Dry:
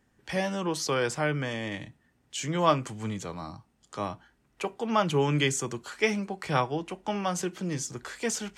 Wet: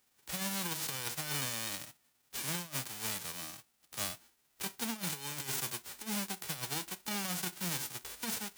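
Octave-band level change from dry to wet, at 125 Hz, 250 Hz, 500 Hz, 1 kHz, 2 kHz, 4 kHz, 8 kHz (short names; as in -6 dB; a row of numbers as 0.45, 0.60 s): -12.5, -11.5, -19.5, -14.0, -8.0, -2.5, -1.0 dB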